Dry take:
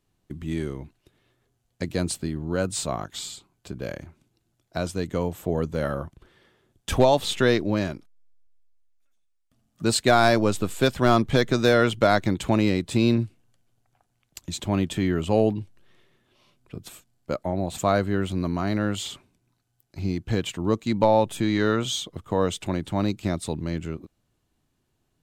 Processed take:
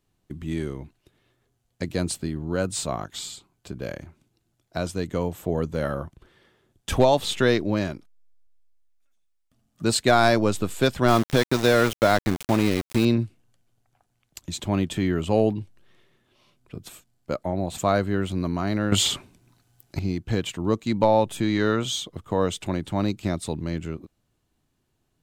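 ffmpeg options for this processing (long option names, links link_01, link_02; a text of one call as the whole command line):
ffmpeg -i in.wav -filter_complex "[0:a]asettb=1/sr,asplit=3[link_01][link_02][link_03];[link_01]atrim=end=11.084[link_04];[link_02]atrim=start=11.08:end=13.05,asetpts=PTS-STARTPTS,afade=type=in:duration=0.004:curve=qsin,afade=type=out:start_time=1.966:duration=0.004:curve=qsin,aeval=exprs='val(0)*gte(abs(val(0)),0.0562)':channel_layout=same[link_05];[link_03]atrim=start=13.046[link_06];[link_04][link_05]acrossfade=duration=0.004:curve1=hsin:curve2=qsin[link_07];[link_07][link_06]acrossfade=duration=0.004:curve1=qsin:curve2=hsin,asplit=3[link_08][link_09][link_10];[link_08]atrim=end=18.922[link_11];[link_09]atrim=start=18.918:end=19.992,asetpts=PTS-STARTPTS,volume=11dB[link_12];[link_10]atrim=start=19.988[link_13];[link_11][link_12]acrossfade=duration=0.004:curve1=hsin:curve2=hsin[link_14];[link_14][link_13]acrossfade=duration=0.004:curve1=hsin:curve2=hsin" out.wav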